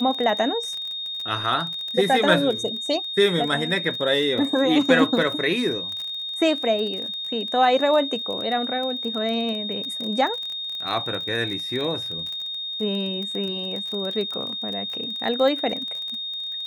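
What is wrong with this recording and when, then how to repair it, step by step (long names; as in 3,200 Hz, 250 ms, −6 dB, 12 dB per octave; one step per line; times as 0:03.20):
surface crackle 24 per second −28 dBFS
whistle 3,700 Hz −28 dBFS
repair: click removal
notch filter 3,700 Hz, Q 30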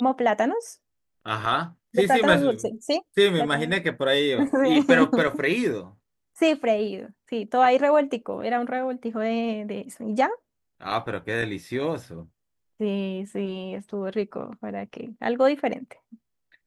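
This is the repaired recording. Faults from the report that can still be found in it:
none of them is left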